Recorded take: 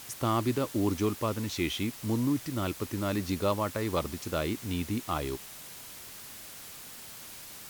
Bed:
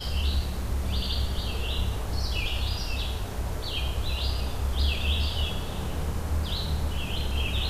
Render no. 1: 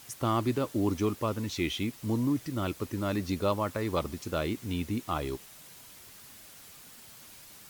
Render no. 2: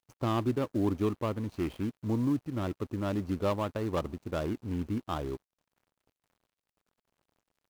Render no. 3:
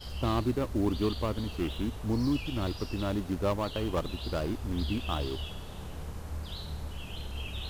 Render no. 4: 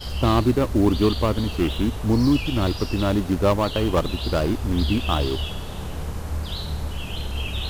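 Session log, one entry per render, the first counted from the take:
broadband denoise 6 dB, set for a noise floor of −46 dBFS
running median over 25 samples; dead-zone distortion −54.5 dBFS
mix in bed −10 dB
level +10 dB

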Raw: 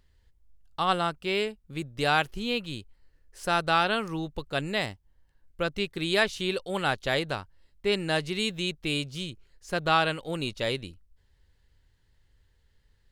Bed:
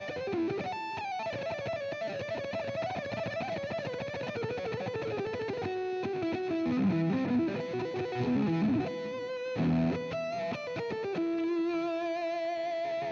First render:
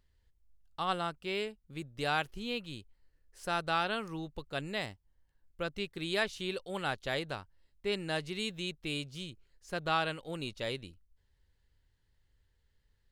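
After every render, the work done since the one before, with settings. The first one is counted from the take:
level −7.5 dB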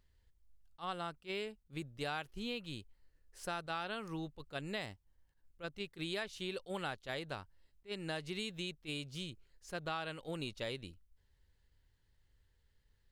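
downward compressor, threshold −36 dBFS, peak gain reduction 10.5 dB
level that may rise only so fast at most 370 dB per second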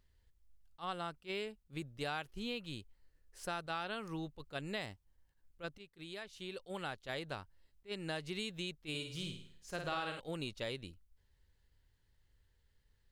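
0:05.78–0:07.19: fade in, from −13.5 dB
0:08.89–0:10.20: flutter between parallel walls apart 9.1 metres, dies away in 0.57 s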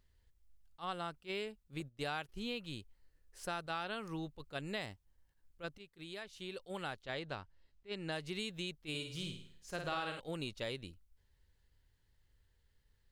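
0:01.80–0:02.29: noise gate −52 dBFS, range −13 dB
0:07.03–0:08.12: low-pass filter 5,900 Hz

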